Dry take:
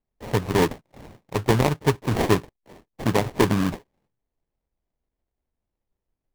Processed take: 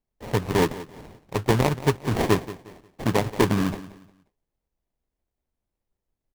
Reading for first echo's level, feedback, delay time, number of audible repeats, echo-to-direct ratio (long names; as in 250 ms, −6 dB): −16.0 dB, 30%, 178 ms, 2, −15.5 dB